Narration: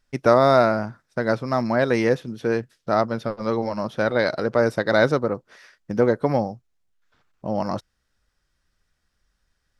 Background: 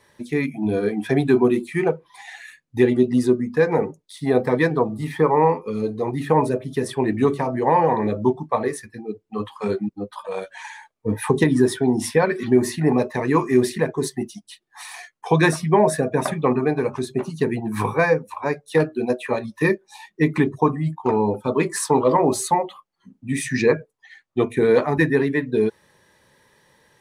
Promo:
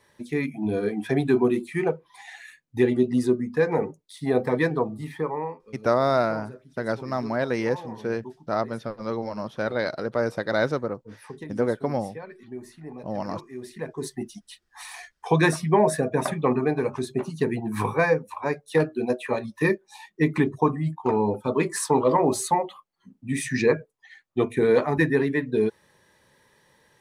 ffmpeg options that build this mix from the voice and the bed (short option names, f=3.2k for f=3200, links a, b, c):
-filter_complex "[0:a]adelay=5600,volume=-5.5dB[a];[1:a]volume=14.5dB,afade=t=out:st=4.72:d=0.89:silence=0.133352,afade=t=in:st=13.59:d=0.89:silence=0.11885[b];[a][b]amix=inputs=2:normalize=0"